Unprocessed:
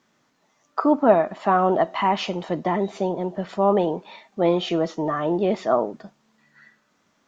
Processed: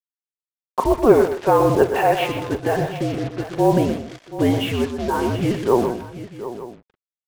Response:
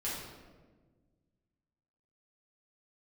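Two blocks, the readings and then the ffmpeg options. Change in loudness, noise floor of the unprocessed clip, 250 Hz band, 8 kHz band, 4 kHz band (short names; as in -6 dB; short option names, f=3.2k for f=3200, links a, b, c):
+3.0 dB, -67 dBFS, +3.0 dB, n/a, +2.5 dB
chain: -af "highpass=f=410:t=q:w=0.5412,highpass=f=410:t=q:w=1.307,lowpass=f=3.6k:t=q:w=0.5176,lowpass=f=3.6k:t=q:w=0.7071,lowpass=f=3.6k:t=q:w=1.932,afreqshift=-240,acrusher=bits=5:mix=0:aa=0.5,aecho=1:1:123|156|731|894:0.355|0.106|0.2|0.126,volume=4dB"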